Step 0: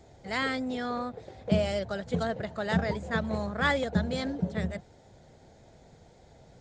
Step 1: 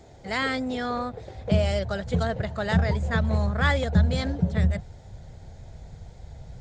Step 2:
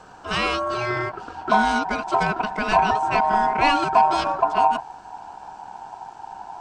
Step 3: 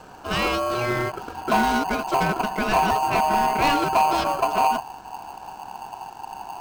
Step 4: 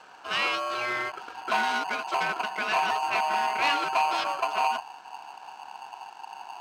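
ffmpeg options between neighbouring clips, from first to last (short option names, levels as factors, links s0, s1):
-filter_complex "[0:a]asubboost=boost=7:cutoff=110,asplit=2[s0][s1];[s1]alimiter=limit=0.0794:level=0:latency=1:release=103,volume=0.708[s2];[s0][s2]amix=inputs=2:normalize=0"
-af "aeval=exprs='val(0)*sin(2*PI*850*n/s)':c=same,aeval=exprs='0.355*(cos(1*acos(clip(val(0)/0.355,-1,1)))-cos(1*PI/2))+0.0112*(cos(5*acos(clip(val(0)/0.355,-1,1)))-cos(5*PI/2))':c=same,volume=1.88"
-filter_complex "[0:a]asplit=2[s0][s1];[s1]acrusher=samples=24:mix=1:aa=0.000001,volume=0.447[s2];[s0][s2]amix=inputs=2:normalize=0,asoftclip=type=tanh:threshold=0.237"
-af "bandpass=f=2400:t=q:w=0.69:csg=0"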